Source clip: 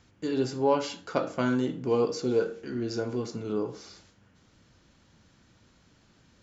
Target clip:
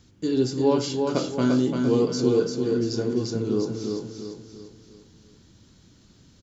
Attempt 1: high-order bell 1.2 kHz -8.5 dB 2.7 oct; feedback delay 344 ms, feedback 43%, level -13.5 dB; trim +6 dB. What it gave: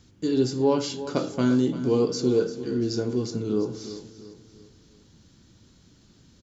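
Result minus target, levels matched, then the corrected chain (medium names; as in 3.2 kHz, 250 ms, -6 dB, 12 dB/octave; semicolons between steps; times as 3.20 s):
echo-to-direct -9 dB
high-order bell 1.2 kHz -8.5 dB 2.7 oct; feedback delay 344 ms, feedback 43%, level -4.5 dB; trim +6 dB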